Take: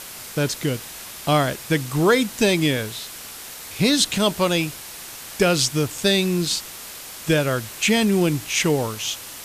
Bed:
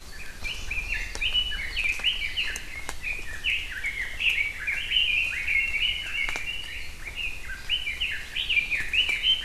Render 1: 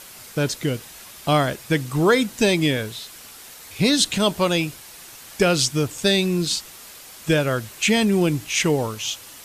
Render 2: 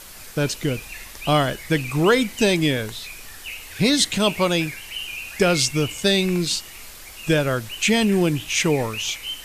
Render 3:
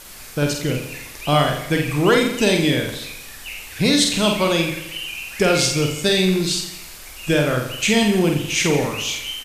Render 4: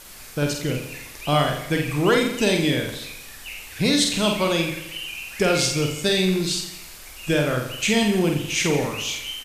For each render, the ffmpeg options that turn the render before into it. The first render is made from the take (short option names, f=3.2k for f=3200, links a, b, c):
-af "afftdn=nr=6:nf=-37"
-filter_complex "[1:a]volume=-8.5dB[a];[0:a][a]amix=inputs=2:normalize=0"
-filter_complex "[0:a]asplit=2[a][b];[b]adelay=48,volume=-4dB[c];[a][c]amix=inputs=2:normalize=0,asplit=2[d][e];[e]aecho=0:1:86|172|258|344|430|516:0.316|0.164|0.0855|0.0445|0.0231|0.012[f];[d][f]amix=inputs=2:normalize=0"
-af "volume=-3dB"